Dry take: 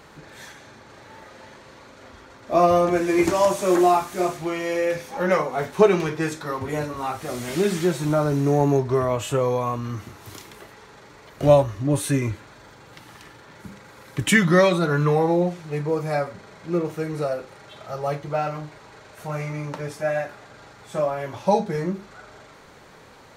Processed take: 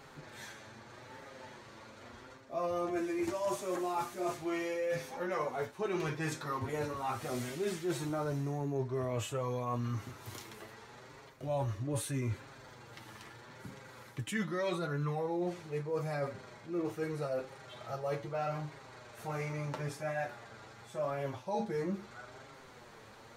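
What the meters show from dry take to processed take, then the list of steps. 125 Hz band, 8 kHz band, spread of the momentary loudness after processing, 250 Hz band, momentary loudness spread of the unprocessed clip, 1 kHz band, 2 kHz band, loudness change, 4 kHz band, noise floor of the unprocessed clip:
−12.0 dB, −12.0 dB, 17 LU, −14.0 dB, 15 LU, −14.0 dB, −14.0 dB, −14.5 dB, −12.5 dB, −48 dBFS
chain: flanger 0.8 Hz, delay 7.3 ms, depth 1.9 ms, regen +24%
reversed playback
downward compressor 10 to 1, threshold −29 dBFS, peak gain reduction 16 dB
reversed playback
level −2.5 dB

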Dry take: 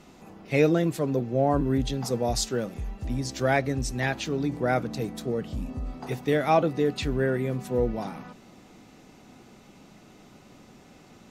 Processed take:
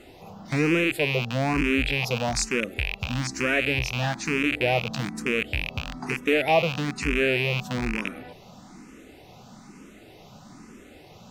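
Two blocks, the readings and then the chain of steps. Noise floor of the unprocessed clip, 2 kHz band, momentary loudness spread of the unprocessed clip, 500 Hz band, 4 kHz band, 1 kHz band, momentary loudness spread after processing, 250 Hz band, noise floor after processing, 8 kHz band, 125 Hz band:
−53 dBFS, +9.0 dB, 12 LU, −1.0 dB, +7.0 dB, −0.5 dB, 8 LU, 0.0 dB, −49 dBFS, +2.0 dB, 0.0 dB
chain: loose part that buzzes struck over −34 dBFS, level −15 dBFS
in parallel at +2 dB: downward compressor, threshold −33 dBFS, peak gain reduction 16.5 dB
on the sum: frequency shifter mixed with the dry sound +1.1 Hz

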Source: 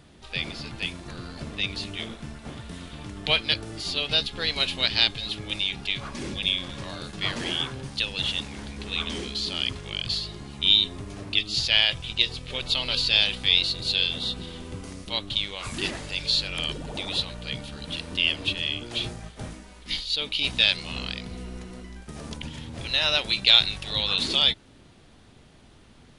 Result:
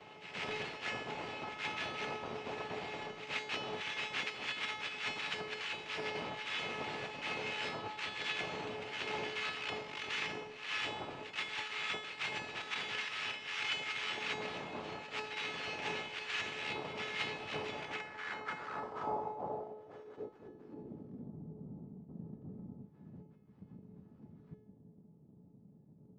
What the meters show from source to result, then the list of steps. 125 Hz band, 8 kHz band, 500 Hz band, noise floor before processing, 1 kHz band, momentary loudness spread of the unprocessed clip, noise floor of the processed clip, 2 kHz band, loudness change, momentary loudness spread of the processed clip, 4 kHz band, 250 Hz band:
−16.0 dB, −13.5 dB, −6.0 dB, −52 dBFS, −2.0 dB, 19 LU, −60 dBFS, −8.5 dB, −15.0 dB, 13 LU, −20.0 dB, −12.0 dB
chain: reversed playback
downward compressor 8 to 1, threshold −36 dBFS, peak gain reduction 24 dB
reversed playback
cochlear-implant simulation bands 2
tuned comb filter 430 Hz, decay 0.68 s, mix 90%
low-pass filter sweep 2,600 Hz → 190 Hz, 0:17.72–0:21.42
echo ahead of the sound 129 ms −12 dB
level +16 dB

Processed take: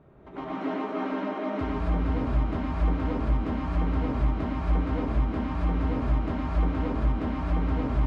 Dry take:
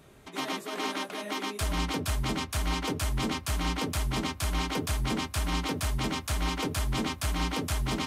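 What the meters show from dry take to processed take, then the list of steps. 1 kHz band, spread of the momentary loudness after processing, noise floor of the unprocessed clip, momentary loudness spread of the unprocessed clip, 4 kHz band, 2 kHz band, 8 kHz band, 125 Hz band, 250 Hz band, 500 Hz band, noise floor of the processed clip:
+0.5 dB, 3 LU, −46 dBFS, 3 LU, −15.5 dB, −5.5 dB, below −25 dB, +4.5 dB, +4.5 dB, +3.5 dB, −37 dBFS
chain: low-pass filter 1,100 Hz 12 dB per octave
downward compressor, threshold −31 dBFS, peak gain reduction 6 dB
reverb whose tail is shaped and stops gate 300 ms rising, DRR −6.5 dB

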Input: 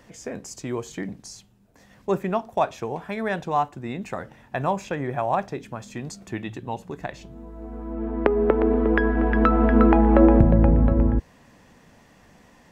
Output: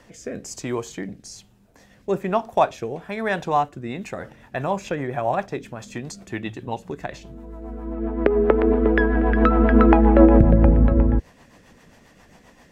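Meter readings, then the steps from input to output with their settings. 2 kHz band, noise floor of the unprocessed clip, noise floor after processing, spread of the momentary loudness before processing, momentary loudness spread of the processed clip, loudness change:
+2.5 dB, −55 dBFS, −54 dBFS, 19 LU, 20 LU, +2.0 dB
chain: parametric band 150 Hz −3.5 dB 2.5 octaves
rotating-speaker cabinet horn 1.1 Hz, later 7.5 Hz, at 0:03.70
level +5.5 dB

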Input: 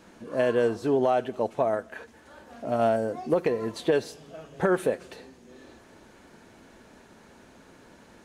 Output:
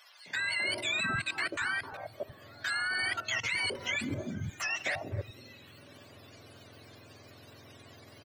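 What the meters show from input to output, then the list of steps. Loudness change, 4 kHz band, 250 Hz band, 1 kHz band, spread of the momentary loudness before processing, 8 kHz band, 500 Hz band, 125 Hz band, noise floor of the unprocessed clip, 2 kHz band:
−6.0 dB, +9.5 dB, −12.5 dB, −9.5 dB, 19 LU, +5.5 dB, −19.0 dB, −3.0 dB, −54 dBFS, +7.5 dB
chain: frequency axis turned over on the octave scale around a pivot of 1,000 Hz
output level in coarse steps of 20 dB
three-band delay without the direct sound highs, mids, lows 260/350 ms, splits 170/910 Hz
level +9 dB

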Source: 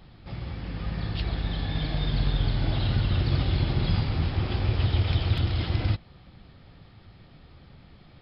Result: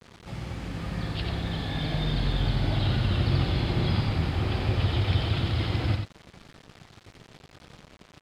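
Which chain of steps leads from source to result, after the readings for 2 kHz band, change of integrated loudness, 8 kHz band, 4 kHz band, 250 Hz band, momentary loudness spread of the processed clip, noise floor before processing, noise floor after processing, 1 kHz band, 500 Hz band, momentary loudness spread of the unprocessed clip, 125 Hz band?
+2.0 dB, 0.0 dB, can't be measured, +1.0 dB, +1.5 dB, 10 LU, −53 dBFS, −56 dBFS, +2.5 dB, +2.5 dB, 8 LU, −0.5 dB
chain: low-shelf EQ 65 Hz −10.5 dB
bit reduction 8 bits
high-frequency loss of the air 60 metres
single-tap delay 90 ms −5 dB
level +1.5 dB

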